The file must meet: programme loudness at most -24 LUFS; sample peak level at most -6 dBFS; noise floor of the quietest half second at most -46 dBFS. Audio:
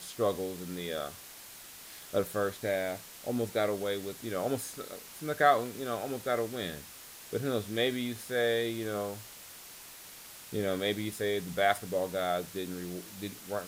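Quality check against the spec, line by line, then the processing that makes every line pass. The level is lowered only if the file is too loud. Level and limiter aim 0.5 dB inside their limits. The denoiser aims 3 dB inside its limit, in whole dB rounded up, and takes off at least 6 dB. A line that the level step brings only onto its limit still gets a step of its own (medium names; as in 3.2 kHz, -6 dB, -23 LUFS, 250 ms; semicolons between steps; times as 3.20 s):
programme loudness -33.0 LUFS: pass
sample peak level -11.5 dBFS: pass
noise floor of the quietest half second -49 dBFS: pass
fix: none needed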